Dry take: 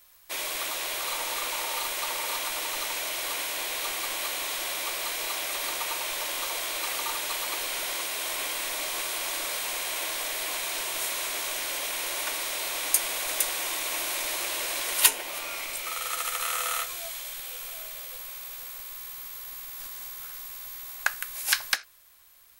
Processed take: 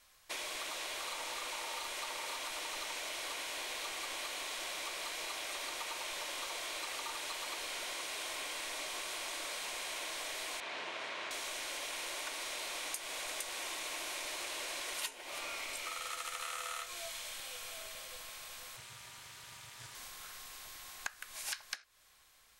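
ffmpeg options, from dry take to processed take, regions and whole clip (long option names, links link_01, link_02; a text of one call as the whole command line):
ffmpeg -i in.wav -filter_complex "[0:a]asettb=1/sr,asplit=3[link_01][link_02][link_03];[link_01]atrim=end=10.604[link_04];[link_02]atrim=start=10.6:end=11.31,asetpts=PTS-STARTPTS,afade=type=in:duration=0.004:curve=qsin,afade=type=out:start_time=0.706:duration=0.004:curve=qsin,aeval=exprs='val(0)+0.00224*(sin(2*PI*60*n/s)+sin(2*PI*2*60*n/s)/2+sin(2*PI*3*60*n/s)/3+sin(2*PI*4*60*n/s)/4+sin(2*PI*5*60*n/s)/5)':channel_layout=same,acrusher=bits=6:dc=4:mix=0:aa=0.000001,highpass=240,lowpass=2900[link_05];[link_03]atrim=start=11.306[link_06];[link_04][link_05]acrossfade=duration=0.004:curve1=hsin:curve2=qsin[link_07];[link_07][link_06]acrossfade=duration=0.004:curve1=qsin:curve2=hsin,asettb=1/sr,asplit=3[link_08][link_09][link_10];[link_08]atrim=end=18.764[link_11];[link_09]atrim=start=18.76:end=19.95,asetpts=PTS-STARTPTS,afade=type=in:duration=0.004:curve=qsin,afade=type=out:start_time=1.186:duration=0.004:curve=qsin,acrossover=split=3100[link_12][link_13];[link_13]acompressor=threshold=-52dB:ratio=4:attack=1:release=60[link_14];[link_12][link_14]amix=inputs=2:normalize=0,equalizer=frequency=7500:width=0.48:gain=13.5,aeval=exprs='val(0)*sin(2*PI*120*n/s)':channel_layout=same[link_15];[link_10]atrim=start=19.946[link_16];[link_11][link_15]acrossfade=duration=0.004:curve1=hsin:curve2=qsin[link_17];[link_17][link_16]acrossfade=duration=0.004:curve1=qsin:curve2=hsin,lowpass=8600,acompressor=threshold=-35dB:ratio=6,volume=-3dB" out.wav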